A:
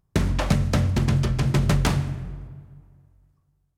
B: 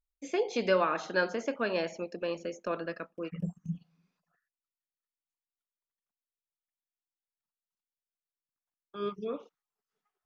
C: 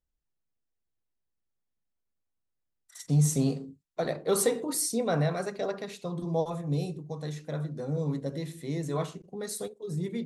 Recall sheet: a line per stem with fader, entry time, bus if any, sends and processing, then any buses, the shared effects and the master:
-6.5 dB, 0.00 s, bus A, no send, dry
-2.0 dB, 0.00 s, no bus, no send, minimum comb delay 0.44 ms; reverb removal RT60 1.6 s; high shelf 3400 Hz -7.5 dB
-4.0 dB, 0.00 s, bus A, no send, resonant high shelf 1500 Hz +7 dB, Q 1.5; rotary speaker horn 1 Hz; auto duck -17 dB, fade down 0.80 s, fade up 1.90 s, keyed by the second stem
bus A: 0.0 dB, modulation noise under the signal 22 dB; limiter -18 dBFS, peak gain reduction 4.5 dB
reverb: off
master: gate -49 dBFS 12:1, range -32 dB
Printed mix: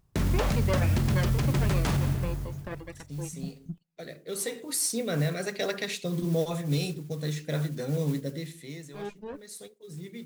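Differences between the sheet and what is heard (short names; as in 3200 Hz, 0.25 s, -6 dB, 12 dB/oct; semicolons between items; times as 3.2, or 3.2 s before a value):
stem A -6.5 dB -> +3.0 dB; stem C -4.0 dB -> +5.0 dB; master: missing gate -49 dBFS 12:1, range -32 dB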